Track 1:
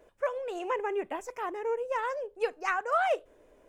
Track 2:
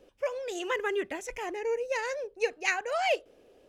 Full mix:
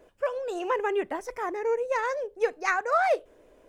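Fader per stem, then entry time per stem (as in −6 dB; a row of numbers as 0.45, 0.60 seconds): +2.0, −6.5 decibels; 0.00, 0.00 seconds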